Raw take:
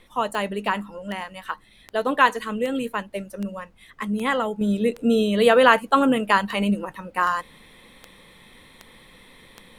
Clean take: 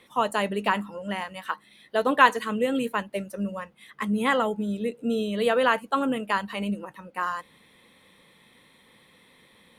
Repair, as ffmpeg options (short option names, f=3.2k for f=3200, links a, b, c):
-af "adeclick=t=4,agate=range=-21dB:threshold=-43dB,asetnsamples=n=441:p=0,asendcmd='4.61 volume volume -7dB',volume=0dB"